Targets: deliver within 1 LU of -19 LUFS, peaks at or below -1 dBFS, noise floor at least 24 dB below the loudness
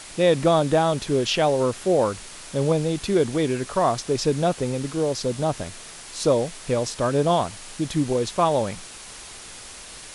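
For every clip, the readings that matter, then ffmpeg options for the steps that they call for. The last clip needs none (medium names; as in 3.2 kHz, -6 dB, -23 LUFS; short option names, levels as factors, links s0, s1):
noise floor -41 dBFS; noise floor target -47 dBFS; loudness -23.0 LUFS; peak level -7.0 dBFS; loudness target -19.0 LUFS
-> -af "afftdn=nr=6:nf=-41"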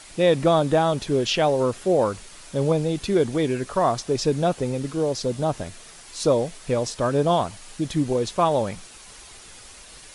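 noise floor -45 dBFS; noise floor target -47 dBFS
-> -af "afftdn=nr=6:nf=-45"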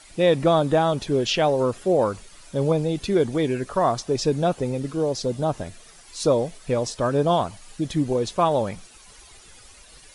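noise floor -49 dBFS; loudness -23.0 LUFS; peak level -7.0 dBFS; loudness target -19.0 LUFS
-> -af "volume=1.58"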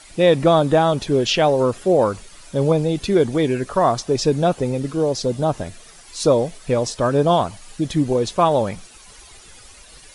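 loudness -19.0 LUFS; peak level -3.0 dBFS; noise floor -45 dBFS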